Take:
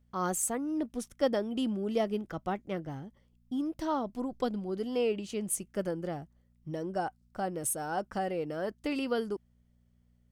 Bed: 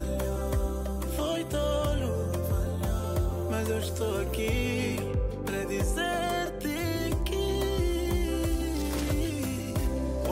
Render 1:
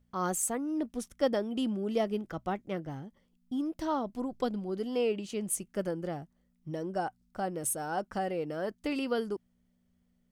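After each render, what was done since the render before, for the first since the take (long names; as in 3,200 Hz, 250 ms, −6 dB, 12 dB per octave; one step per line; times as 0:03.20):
hum removal 60 Hz, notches 2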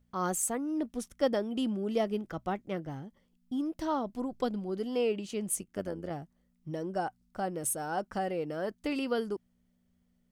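0:05.61–0:06.11: amplitude modulation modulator 95 Hz, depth 55%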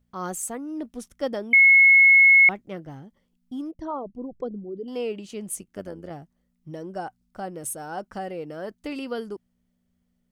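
0:01.53–0:02.49: beep over 2,180 Hz −10.5 dBFS
0:03.71–0:04.88: spectral envelope exaggerated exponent 2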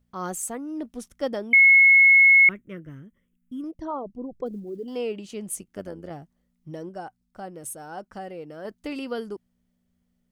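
0:01.79–0:03.64: phaser with its sweep stopped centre 1,900 Hz, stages 4
0:04.46–0:04.97: one scale factor per block 7 bits
0:06.89–0:08.65: clip gain −4 dB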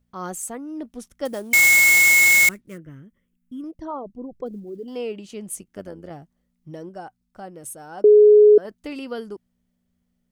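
0:01.25–0:02.78: sample-rate reduction 9,700 Hz, jitter 20%
0:08.04–0:08.58: beep over 420 Hz −7.5 dBFS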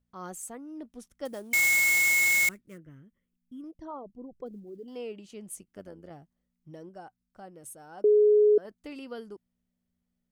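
level −9 dB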